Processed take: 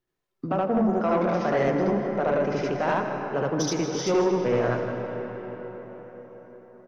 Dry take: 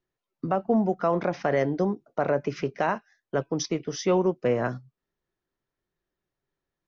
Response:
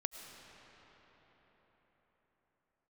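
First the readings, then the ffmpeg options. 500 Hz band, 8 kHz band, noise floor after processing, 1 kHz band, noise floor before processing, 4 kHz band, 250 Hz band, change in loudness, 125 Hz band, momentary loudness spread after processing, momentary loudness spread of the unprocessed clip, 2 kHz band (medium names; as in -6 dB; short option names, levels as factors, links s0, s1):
+2.0 dB, no reading, -80 dBFS, +2.5 dB, under -85 dBFS, +2.5 dB, +2.0 dB, +1.5 dB, +1.5 dB, 16 LU, 8 LU, +2.5 dB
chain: -filter_complex "[0:a]flanger=delay=8.1:depth=6:regen=79:speed=1.8:shape=triangular,asplit=2[s0][s1];[1:a]atrim=start_sample=2205,adelay=74[s2];[s1][s2]afir=irnorm=-1:irlink=0,volume=1.41[s3];[s0][s3]amix=inputs=2:normalize=0,asoftclip=type=tanh:threshold=0.112,asplit=2[s4][s5];[s5]adelay=157.4,volume=0.251,highshelf=f=4000:g=-3.54[s6];[s4][s6]amix=inputs=2:normalize=0,volume=1.5"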